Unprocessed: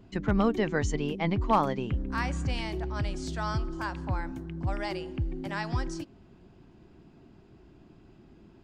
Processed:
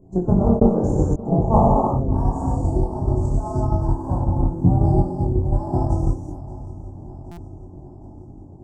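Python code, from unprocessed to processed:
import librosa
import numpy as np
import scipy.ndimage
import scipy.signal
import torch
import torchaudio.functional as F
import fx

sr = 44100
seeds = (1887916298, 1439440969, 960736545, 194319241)

y = fx.spec_quant(x, sr, step_db=15)
y = fx.peak_eq(y, sr, hz=170.0, db=11.0, octaves=1.0, at=(4.33, 5.1))
y = fx.rev_gated(y, sr, seeds[0], gate_ms=370, shape='flat', drr_db=-5.5)
y = fx.transient(y, sr, attack_db=7, sustain_db=-6)
y = fx.step_gate(y, sr, bpm=172, pattern='xxxxx..x', floor_db=-60.0, edge_ms=4.5, at=(0.56, 1.25), fade=0.02)
y = scipy.signal.sosfilt(scipy.signal.ellip(3, 1.0, 70, [840.0, 7400.0], 'bandstop', fs=sr, output='sos'), y)
y = fx.high_shelf(y, sr, hz=6100.0, db=-11.5)
y = fx.doubler(y, sr, ms=22.0, db=-3.0)
y = fx.echo_swing(y, sr, ms=769, ratio=3, feedback_pct=57, wet_db=-18)
y = fx.buffer_glitch(y, sr, at_s=(7.31,), block=256, repeats=10)
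y = y * librosa.db_to_amplitude(2.5)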